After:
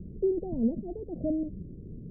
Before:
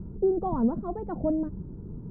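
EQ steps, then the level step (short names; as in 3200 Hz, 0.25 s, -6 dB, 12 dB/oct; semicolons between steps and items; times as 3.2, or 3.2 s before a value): elliptic low-pass 600 Hz, stop band 50 dB; notches 50/100/150/200 Hz; -2.0 dB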